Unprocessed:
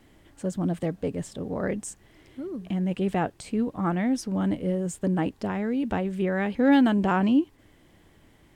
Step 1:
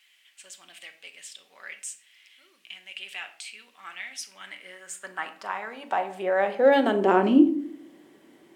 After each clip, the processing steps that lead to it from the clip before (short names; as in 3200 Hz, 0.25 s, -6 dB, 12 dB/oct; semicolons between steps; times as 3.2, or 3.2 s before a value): high-pass sweep 2600 Hz -> 310 Hz, 4.15–7.45; shoebox room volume 700 m³, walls furnished, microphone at 1.1 m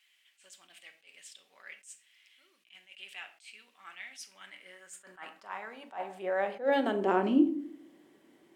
attack slew limiter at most 210 dB/s; gain -7 dB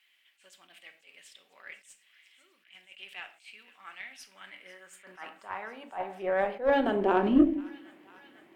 added harmonics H 4 -22 dB, 8 -38 dB, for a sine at -12.5 dBFS; bell 7400 Hz -9 dB 1.5 oct; thin delay 0.496 s, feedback 77%, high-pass 1700 Hz, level -17 dB; gain +3 dB